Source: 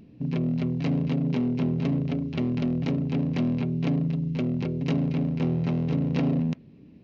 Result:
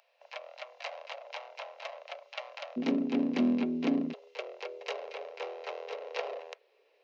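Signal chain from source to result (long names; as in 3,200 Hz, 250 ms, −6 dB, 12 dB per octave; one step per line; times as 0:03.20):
Butterworth high-pass 560 Hz 72 dB per octave, from 0:02.76 200 Hz, from 0:04.12 440 Hz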